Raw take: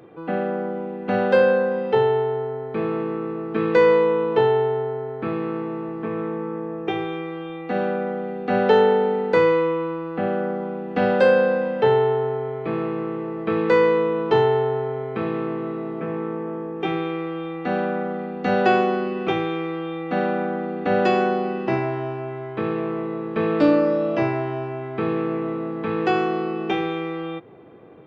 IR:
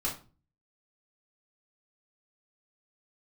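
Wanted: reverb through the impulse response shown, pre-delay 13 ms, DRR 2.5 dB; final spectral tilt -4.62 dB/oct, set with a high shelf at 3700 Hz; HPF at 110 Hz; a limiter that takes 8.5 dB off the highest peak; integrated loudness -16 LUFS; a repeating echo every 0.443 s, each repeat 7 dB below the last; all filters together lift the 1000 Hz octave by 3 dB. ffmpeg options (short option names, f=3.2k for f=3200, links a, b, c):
-filter_complex "[0:a]highpass=110,equalizer=f=1k:t=o:g=3.5,highshelf=f=3.7k:g=7.5,alimiter=limit=-11.5dB:level=0:latency=1,aecho=1:1:443|886|1329|1772|2215:0.447|0.201|0.0905|0.0407|0.0183,asplit=2[a][b];[1:a]atrim=start_sample=2205,adelay=13[c];[b][c]afir=irnorm=-1:irlink=0,volume=-7.5dB[d];[a][d]amix=inputs=2:normalize=0,volume=4.5dB"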